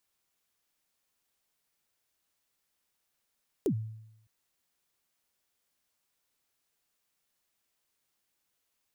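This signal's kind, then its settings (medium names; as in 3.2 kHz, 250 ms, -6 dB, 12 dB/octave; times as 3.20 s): kick drum length 0.61 s, from 460 Hz, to 110 Hz, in 81 ms, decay 0.84 s, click on, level -22.5 dB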